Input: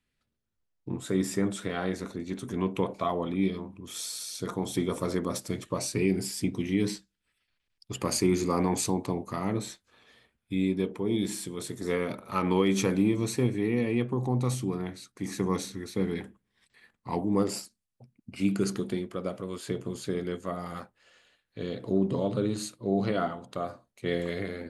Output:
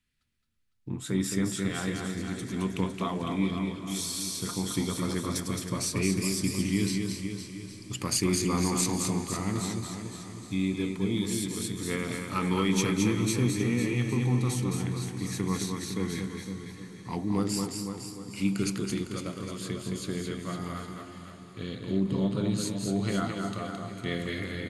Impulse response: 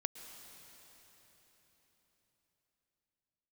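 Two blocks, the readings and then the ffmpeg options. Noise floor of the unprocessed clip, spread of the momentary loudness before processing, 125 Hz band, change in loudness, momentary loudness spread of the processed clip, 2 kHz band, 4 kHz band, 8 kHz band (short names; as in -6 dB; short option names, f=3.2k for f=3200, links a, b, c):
-81 dBFS, 11 LU, +2.5 dB, 0.0 dB, 12 LU, +2.5 dB, +4.0 dB, +4.5 dB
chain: -filter_complex "[0:a]equalizer=f=570:t=o:w=1.8:g=-11,aeval=exprs='0.15*(cos(1*acos(clip(val(0)/0.15,-1,1)))-cos(1*PI/2))+0.00119*(cos(2*acos(clip(val(0)/0.15,-1,1)))-cos(2*PI/2))+0.00266*(cos(4*acos(clip(val(0)/0.15,-1,1)))-cos(4*PI/2))':c=same,aecho=1:1:217|243|506|811:0.596|0.133|0.355|0.168,asplit=2[a][b];[1:a]atrim=start_sample=2205,asetrate=23814,aresample=44100[c];[b][c]afir=irnorm=-1:irlink=0,volume=-5.5dB[d];[a][d]amix=inputs=2:normalize=0,volume=-2dB"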